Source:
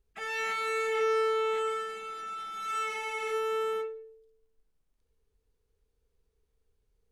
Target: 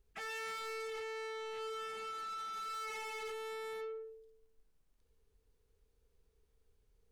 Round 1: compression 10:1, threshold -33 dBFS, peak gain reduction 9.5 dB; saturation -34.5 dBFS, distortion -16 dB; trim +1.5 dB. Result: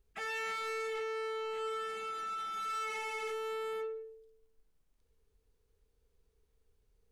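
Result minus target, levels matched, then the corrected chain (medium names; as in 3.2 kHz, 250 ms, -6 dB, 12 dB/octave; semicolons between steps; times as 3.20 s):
saturation: distortion -7 dB
compression 10:1, threshold -33 dBFS, peak gain reduction 9.5 dB; saturation -42 dBFS, distortion -9 dB; trim +1.5 dB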